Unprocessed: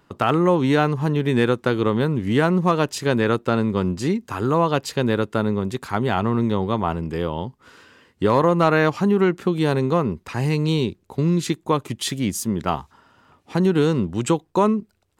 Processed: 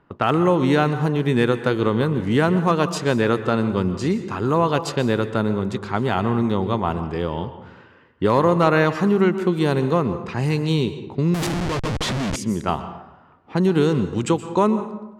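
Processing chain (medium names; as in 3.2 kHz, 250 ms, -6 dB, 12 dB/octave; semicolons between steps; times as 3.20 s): plate-style reverb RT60 1 s, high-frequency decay 0.6×, pre-delay 110 ms, DRR 11 dB; 11.34–12.36 s: Schmitt trigger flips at -29 dBFS; level-controlled noise filter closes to 2 kHz, open at -16.5 dBFS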